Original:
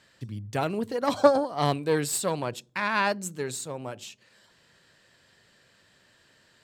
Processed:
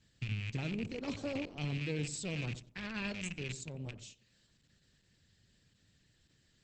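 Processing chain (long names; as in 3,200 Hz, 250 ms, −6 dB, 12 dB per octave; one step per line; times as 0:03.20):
loose part that buzzes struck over −40 dBFS, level −18 dBFS
guitar amp tone stack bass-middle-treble 10-0-1
brickwall limiter −39 dBFS, peak gain reduction 8.5 dB
feedback echo with a low-pass in the loop 91 ms, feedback 31%, low-pass 1,100 Hz, level −11.5 dB
level +12 dB
Opus 10 kbit/s 48,000 Hz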